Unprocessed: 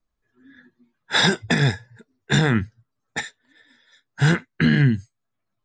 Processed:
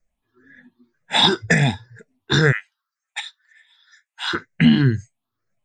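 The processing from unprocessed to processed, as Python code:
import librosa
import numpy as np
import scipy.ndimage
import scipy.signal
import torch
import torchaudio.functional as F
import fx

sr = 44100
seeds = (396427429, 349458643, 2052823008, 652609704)

y = fx.spec_ripple(x, sr, per_octave=0.54, drift_hz=2.0, depth_db=15)
y = fx.highpass(y, sr, hz=1100.0, slope=24, at=(2.51, 4.33), fade=0.02)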